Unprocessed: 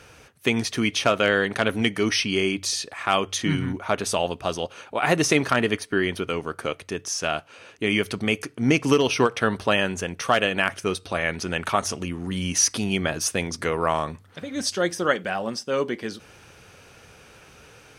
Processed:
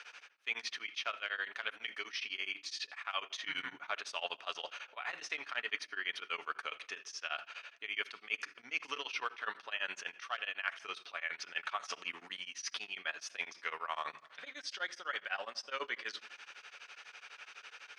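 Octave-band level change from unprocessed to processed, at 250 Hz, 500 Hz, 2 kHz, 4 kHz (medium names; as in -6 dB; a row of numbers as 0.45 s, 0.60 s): -35.5 dB, -25.5 dB, -11.5 dB, -12.0 dB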